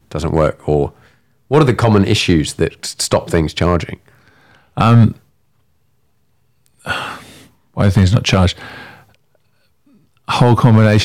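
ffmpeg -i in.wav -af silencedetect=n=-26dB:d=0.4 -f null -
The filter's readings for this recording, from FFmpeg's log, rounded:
silence_start: 0.88
silence_end: 1.51 | silence_duration: 0.63
silence_start: 3.94
silence_end: 4.77 | silence_duration: 0.83
silence_start: 5.12
silence_end: 6.85 | silence_duration: 1.73
silence_start: 7.18
silence_end: 7.77 | silence_duration: 0.59
silence_start: 8.85
silence_end: 10.28 | silence_duration: 1.43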